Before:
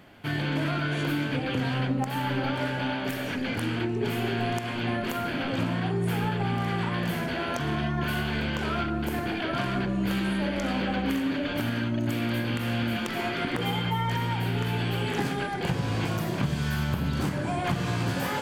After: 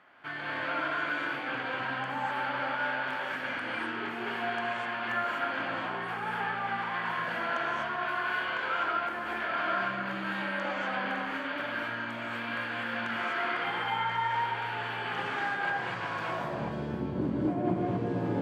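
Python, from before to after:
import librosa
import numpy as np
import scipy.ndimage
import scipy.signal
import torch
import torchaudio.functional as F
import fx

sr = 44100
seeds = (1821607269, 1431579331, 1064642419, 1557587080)

y = fx.filter_sweep_bandpass(x, sr, from_hz=1300.0, to_hz=350.0, start_s=16.14, end_s=16.84, q=1.6)
y = fx.rev_gated(y, sr, seeds[0], gate_ms=280, shape='rising', drr_db=-3.5)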